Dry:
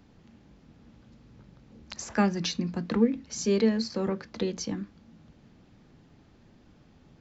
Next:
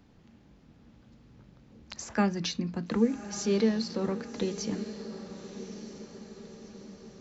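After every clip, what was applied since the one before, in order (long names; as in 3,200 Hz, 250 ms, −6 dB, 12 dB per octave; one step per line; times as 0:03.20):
feedback delay with all-pass diffusion 1,183 ms, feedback 52%, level −12 dB
level −2 dB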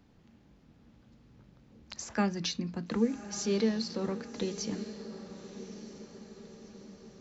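dynamic equaliser 5,100 Hz, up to +3 dB, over −50 dBFS, Q 0.7
level −3 dB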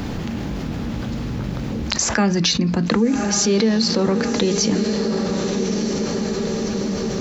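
envelope flattener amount 70%
level +8 dB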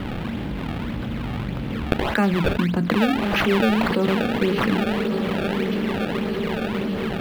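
sample-and-hold swept by an LFO 25×, swing 160% 1.7 Hz
high shelf with overshoot 4,500 Hz −11.5 dB, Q 1.5
level −2 dB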